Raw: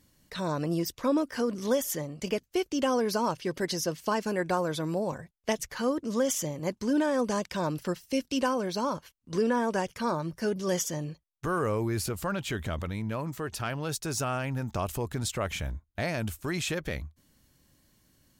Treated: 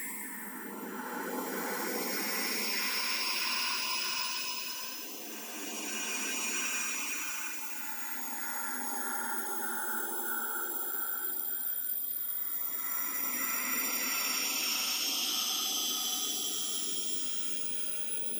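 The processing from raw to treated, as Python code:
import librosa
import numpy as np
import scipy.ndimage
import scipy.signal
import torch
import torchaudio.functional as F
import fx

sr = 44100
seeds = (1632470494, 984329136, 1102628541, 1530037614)

y = fx.octave_mirror(x, sr, pivot_hz=1800.0)
y = fx.over_compress(y, sr, threshold_db=-40.0, ratio=-1.0)
y = fx.paulstretch(y, sr, seeds[0], factor=26.0, window_s=0.1, from_s=12.59)
y = fx.filter_lfo_notch(y, sr, shape='sine', hz=1.6, low_hz=300.0, high_hz=1700.0, q=2.7)
y = F.gain(torch.from_numpy(y), 3.0).numpy()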